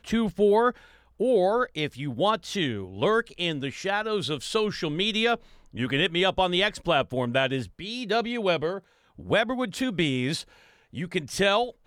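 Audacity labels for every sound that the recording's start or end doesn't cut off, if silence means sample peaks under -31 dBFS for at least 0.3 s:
1.200000	5.350000	sound
5.760000	8.780000	sound
9.270000	10.410000	sound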